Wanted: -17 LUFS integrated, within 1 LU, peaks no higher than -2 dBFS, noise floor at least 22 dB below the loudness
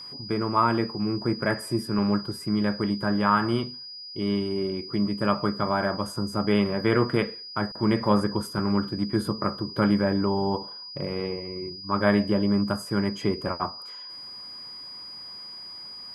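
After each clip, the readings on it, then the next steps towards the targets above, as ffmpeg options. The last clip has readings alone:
steady tone 4900 Hz; tone level -38 dBFS; loudness -26.0 LUFS; peak -8.0 dBFS; loudness target -17.0 LUFS
-> -af "bandreject=f=4.9k:w=30"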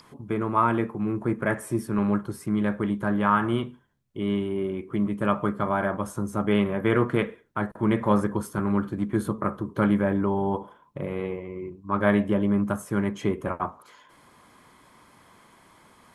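steady tone none; loudness -26.0 LUFS; peak -8.0 dBFS; loudness target -17.0 LUFS
-> -af "volume=9dB,alimiter=limit=-2dB:level=0:latency=1"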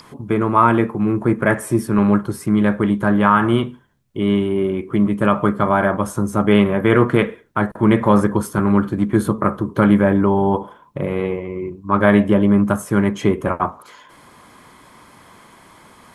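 loudness -17.5 LUFS; peak -2.0 dBFS; noise floor -48 dBFS

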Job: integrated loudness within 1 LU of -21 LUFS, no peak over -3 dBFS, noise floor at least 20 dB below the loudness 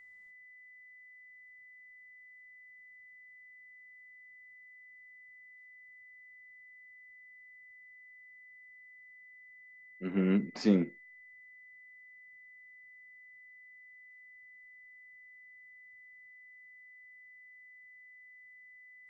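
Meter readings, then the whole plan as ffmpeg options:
steady tone 2000 Hz; tone level -53 dBFS; loudness -30.5 LUFS; peak -14.5 dBFS; loudness target -21.0 LUFS
-> -af "bandreject=f=2k:w=30"
-af "volume=9.5dB"

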